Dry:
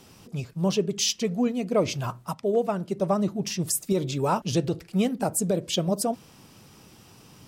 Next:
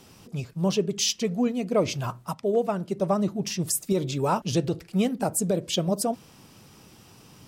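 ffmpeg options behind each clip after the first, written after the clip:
ffmpeg -i in.wav -af anull out.wav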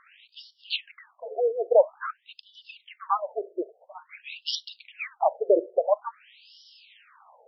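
ffmpeg -i in.wav -af "afftfilt=real='re*between(b*sr/1024,480*pow(4100/480,0.5+0.5*sin(2*PI*0.49*pts/sr))/1.41,480*pow(4100/480,0.5+0.5*sin(2*PI*0.49*pts/sr))*1.41)':imag='im*between(b*sr/1024,480*pow(4100/480,0.5+0.5*sin(2*PI*0.49*pts/sr))/1.41,480*pow(4100/480,0.5+0.5*sin(2*PI*0.49*pts/sr))*1.41)':win_size=1024:overlap=0.75,volume=7.5dB" out.wav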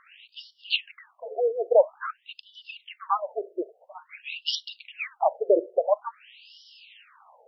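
ffmpeg -i in.wav -af "equalizer=frequency=2800:width_type=o:width=0.24:gain=7" out.wav

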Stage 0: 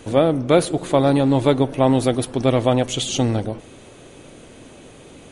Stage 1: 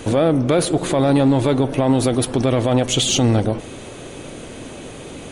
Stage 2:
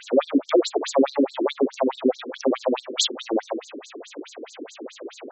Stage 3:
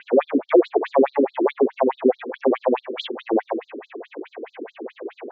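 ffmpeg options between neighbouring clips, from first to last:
ffmpeg -i in.wav -filter_complex "[0:a]asplit=2[link_01][link_02];[link_02]acompressor=threshold=-23dB:ratio=6,volume=2dB[link_03];[link_01][link_03]amix=inputs=2:normalize=0,alimiter=limit=-8.5dB:level=0:latency=1:release=27,acontrast=41,volume=-4dB" out.wav
ffmpeg -i in.wav -af "afftfilt=real='re*between(b*sr/1024,310*pow(5800/310,0.5+0.5*sin(2*PI*4.7*pts/sr))/1.41,310*pow(5800/310,0.5+0.5*sin(2*PI*4.7*pts/sr))*1.41)':imag='im*between(b*sr/1024,310*pow(5800/310,0.5+0.5*sin(2*PI*4.7*pts/sr))/1.41,310*pow(5800/310,0.5+0.5*sin(2*PI*4.7*pts/sr))*1.41)':win_size=1024:overlap=0.75,volume=3.5dB" out.wav
ffmpeg -i in.wav -af "highpass=140,equalizer=frequency=280:width_type=q:width=4:gain=-8,equalizer=frequency=590:width_type=q:width=4:gain=-6,equalizer=frequency=1300:width_type=q:width=4:gain=-8,lowpass=frequency=2200:width=0.5412,lowpass=frequency=2200:width=1.3066,volume=6.5dB" out.wav

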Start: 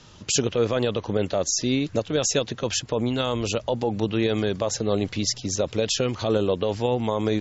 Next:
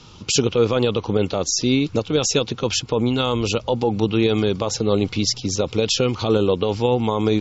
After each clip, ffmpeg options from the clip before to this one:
ffmpeg -i in.wav -af "superequalizer=8b=0.501:11b=0.398:15b=0.631,volume=5dB" out.wav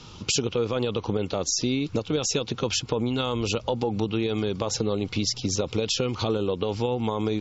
ffmpeg -i in.wav -af "acompressor=threshold=-22dB:ratio=6" out.wav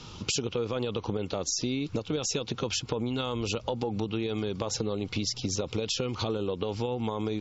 ffmpeg -i in.wav -af "acompressor=threshold=-30dB:ratio=2" out.wav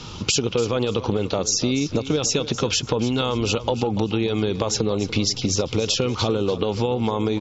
ffmpeg -i in.wav -af "aecho=1:1:291|582|873:0.2|0.0539|0.0145,volume=8.5dB" out.wav

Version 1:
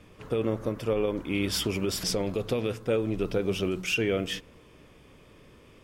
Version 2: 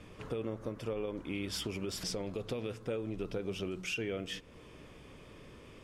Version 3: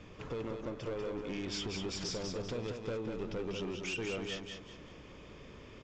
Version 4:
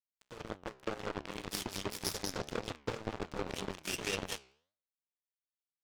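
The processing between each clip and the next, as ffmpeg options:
ffmpeg -i in.wav -af "lowpass=11000,acompressor=threshold=-44dB:ratio=2,volume=1dB" out.wav
ffmpeg -i in.wav -af "aresample=16000,volume=34.5dB,asoftclip=hard,volume=-34.5dB,aresample=44100,aecho=1:1:193|386|579|772:0.562|0.197|0.0689|0.0241" out.wav
ffmpeg -i in.wav -af "aeval=exprs='0.0447*(cos(1*acos(clip(val(0)/0.0447,-1,1)))-cos(1*PI/2))+0.0158*(cos(3*acos(clip(val(0)/0.0447,-1,1)))-cos(3*PI/2))':channel_layout=same,aeval=exprs='sgn(val(0))*max(abs(val(0))-0.00237,0)':channel_layout=same,flanger=delay=9.2:depth=6.7:regen=85:speed=1.9:shape=triangular,volume=17.5dB" out.wav

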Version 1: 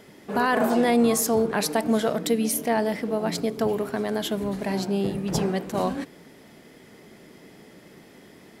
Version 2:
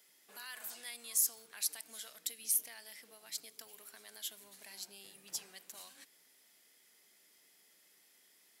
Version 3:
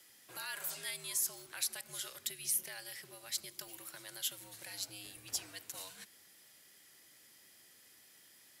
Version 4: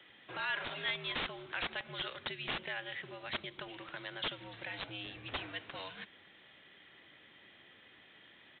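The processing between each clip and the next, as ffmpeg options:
ffmpeg -i in.wav -filter_complex "[0:a]aderivative,acrossover=split=100|1500|2900[link_01][link_02][link_03][link_04];[link_02]acompressor=threshold=-54dB:ratio=6[link_05];[link_01][link_05][link_03][link_04]amix=inputs=4:normalize=0,volume=-6dB" out.wav
ffmpeg -i in.wav -filter_complex "[0:a]acrossover=split=230|640|2900[link_01][link_02][link_03][link_04];[link_04]alimiter=level_in=4dB:limit=-24dB:level=0:latency=1:release=152,volume=-4dB[link_05];[link_01][link_02][link_03][link_05]amix=inputs=4:normalize=0,afreqshift=-79,volume=5dB" out.wav
ffmpeg -i in.wav -af "aeval=exprs='(mod(33.5*val(0)+1,2)-1)/33.5':channel_layout=same,aresample=8000,aresample=44100,volume=8.5dB" out.wav

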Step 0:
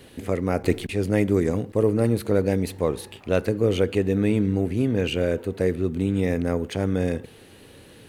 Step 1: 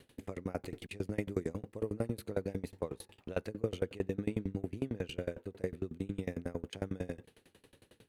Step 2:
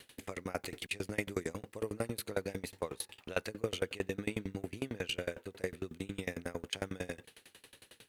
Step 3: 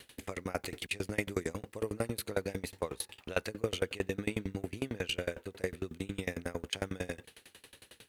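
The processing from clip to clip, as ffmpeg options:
ffmpeg -i in.wav -af "aeval=exprs='val(0)*pow(10,-28*if(lt(mod(11*n/s,1),2*abs(11)/1000),1-mod(11*n/s,1)/(2*abs(11)/1000),(mod(11*n/s,1)-2*abs(11)/1000)/(1-2*abs(11)/1000))/20)':channel_layout=same,volume=-7.5dB" out.wav
ffmpeg -i in.wav -af "tiltshelf=frequency=810:gain=-7.5,volume=3dB" out.wav
ffmpeg -i in.wav -af "equalizer=frequency=62:width_type=o:width=0.77:gain=5.5,volume=2dB" out.wav

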